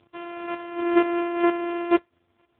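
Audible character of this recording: a buzz of ramps at a fixed pitch in blocks of 128 samples; chopped level 2.1 Hz, depth 60%, duty 15%; a quantiser's noise floor 12-bit, dither none; AMR-NB

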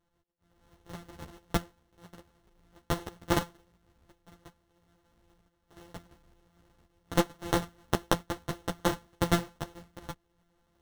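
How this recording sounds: a buzz of ramps at a fixed pitch in blocks of 256 samples; tremolo saw up 0.73 Hz, depth 60%; aliases and images of a low sample rate 2.4 kHz, jitter 0%; a shimmering, thickened sound

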